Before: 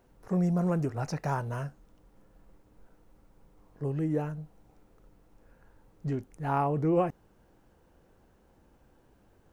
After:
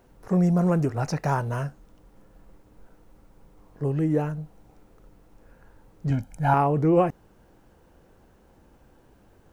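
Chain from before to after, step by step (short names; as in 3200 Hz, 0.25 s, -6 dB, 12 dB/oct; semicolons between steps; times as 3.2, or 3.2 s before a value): 6.1–6.54 comb 1.3 ms, depth 95%; gain +6 dB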